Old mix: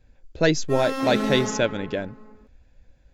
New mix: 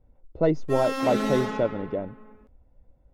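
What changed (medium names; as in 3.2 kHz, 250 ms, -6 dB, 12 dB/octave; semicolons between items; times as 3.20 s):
speech: add Savitzky-Golay filter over 65 samples; master: add bass shelf 410 Hz -3 dB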